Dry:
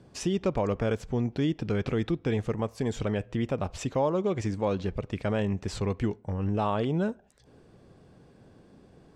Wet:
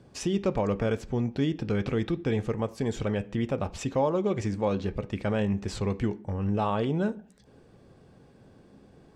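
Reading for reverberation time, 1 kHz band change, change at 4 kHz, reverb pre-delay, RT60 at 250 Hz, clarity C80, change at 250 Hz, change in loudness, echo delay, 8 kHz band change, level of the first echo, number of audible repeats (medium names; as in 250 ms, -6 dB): 0.45 s, +0.5 dB, 0.0 dB, 3 ms, 0.65 s, 25.5 dB, +1.0 dB, +0.5 dB, no echo, 0.0 dB, no echo, no echo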